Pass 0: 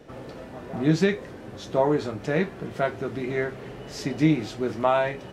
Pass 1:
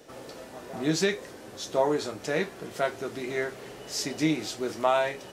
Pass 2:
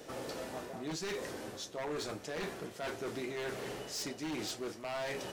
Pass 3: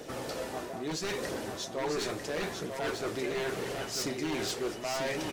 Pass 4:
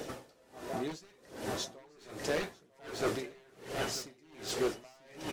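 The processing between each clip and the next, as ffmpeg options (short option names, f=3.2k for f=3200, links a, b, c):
-af "bass=f=250:g=-9,treble=f=4k:g=12,volume=-2dB"
-af "areverse,acompressor=threshold=-37dB:ratio=5,areverse,aeval=exprs='0.0188*(abs(mod(val(0)/0.0188+3,4)-2)-1)':c=same,volume=2dB"
-filter_complex "[0:a]aphaser=in_gain=1:out_gain=1:delay=3.2:decay=0.25:speed=0.73:type=triangular,asplit=2[a][b];[b]aecho=0:1:945:0.531[c];[a][c]amix=inputs=2:normalize=0,volume=4.5dB"
-af "aeval=exprs='val(0)*pow(10,-32*(0.5-0.5*cos(2*PI*1.3*n/s))/20)':c=same,volume=3.5dB"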